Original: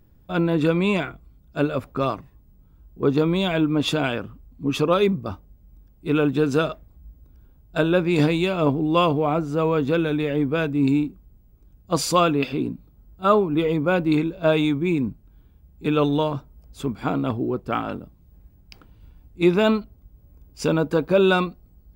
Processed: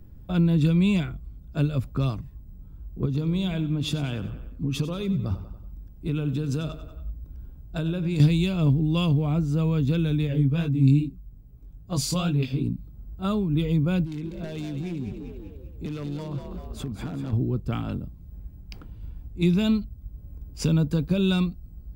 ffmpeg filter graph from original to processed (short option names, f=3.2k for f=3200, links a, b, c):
-filter_complex "[0:a]asettb=1/sr,asplit=3[a][b][c];[a]atrim=end=3.054[d];[b]atrim=start=3.05:end=8.2,asetpts=PTS-STARTPTS,afade=t=in:d=0.004:c=qsin,afade=t=out:st=5.146:d=0.004:c=qsin,acompressor=threshold=-27dB:ratio=2:attack=3.2:release=140:knee=1:detection=peak,aecho=1:1:94|188|282|376:0.2|0.0898|0.0404|0.0182,atrim=end_sample=227115[e];[c]atrim=start=8.196[f];[d][e]acrossfade=d=0.004:c1=hsin:c2=qsin[g];[g][f]acrossfade=d=0.004:c1=qsin:c2=hsin,asettb=1/sr,asplit=3[h][i][j];[h]atrim=end=10.274[k];[i]atrim=start=10.27:end=12.64,asetpts=PTS-STARTPTS,afade=t=in:d=0.004:c=qsin,afade=t=out:st=2.366:d=0.004:c=qsin,aecho=1:1:7.2:0.37,atrim=end_sample=104517,flanger=delay=15:depth=7.2:speed=2.4[l];[j]atrim=start=12.636[m];[k][l]acrossfade=d=0.004:c1=hsin:c2=qsin[n];[n][m]acrossfade=d=0.004:c1=qsin:c2=hsin,asettb=1/sr,asplit=3[o][p][q];[o]atrim=end=14.044[r];[p]atrim=start=14.04:end=17.33,asetpts=PTS-STARTPTS,afade=t=in:d=0.004:c=qsin,afade=t=out:st=3.286:d=0.004:c=qsin,acompressor=threshold=-36dB:ratio=2.5:attack=3.2:release=140:knee=1:detection=peak,aeval=exprs='0.0422*(abs(mod(val(0)/0.0422+3,4)-2)-1)':c=same,asplit=6[s][t][u][v][w][x];[t]adelay=195,afreqshift=43,volume=-8dB[y];[u]adelay=390,afreqshift=86,volume=-14.6dB[z];[v]adelay=585,afreqshift=129,volume=-21.1dB[aa];[w]adelay=780,afreqshift=172,volume=-27.7dB[ab];[x]adelay=975,afreqshift=215,volume=-34.2dB[ac];[s][y][z][aa][ab][ac]amix=inputs=6:normalize=0,atrim=end_sample=145089[ad];[q]atrim=start=17.326[ae];[r][ad]acrossfade=d=0.004:c1=hsin:c2=qsin[af];[af][ae]acrossfade=d=0.004:c1=qsin:c2=hsin,lowshelf=f=290:g=10.5,acrossover=split=190|3000[ag][ah][ai];[ah]acompressor=threshold=-37dB:ratio=3[aj];[ag][aj][ai]amix=inputs=3:normalize=0"